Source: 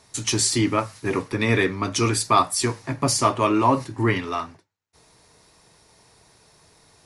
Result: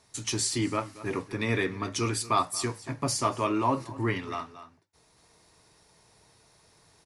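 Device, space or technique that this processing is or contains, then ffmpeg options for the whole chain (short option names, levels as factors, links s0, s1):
ducked delay: -filter_complex "[0:a]asplit=3[s0][s1][s2];[s1]adelay=229,volume=0.794[s3];[s2]apad=whole_len=321163[s4];[s3][s4]sidechaincompress=threshold=0.00631:ratio=3:attack=26:release=426[s5];[s0][s5]amix=inputs=2:normalize=0,volume=0.422"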